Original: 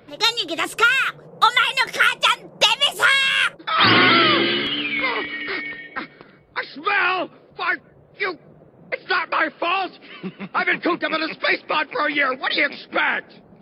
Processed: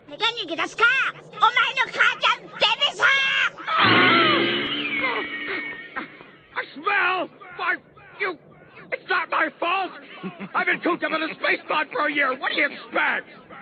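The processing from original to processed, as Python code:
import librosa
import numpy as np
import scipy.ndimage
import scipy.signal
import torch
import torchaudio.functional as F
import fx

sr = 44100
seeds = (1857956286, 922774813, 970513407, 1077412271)

y = fx.freq_compress(x, sr, knee_hz=3100.0, ratio=1.5)
y = fx.bass_treble(y, sr, bass_db=-1, treble_db=-5)
y = fx.echo_warbled(y, sr, ms=551, feedback_pct=47, rate_hz=2.8, cents=184, wet_db=-21)
y = y * librosa.db_to_amplitude(-1.5)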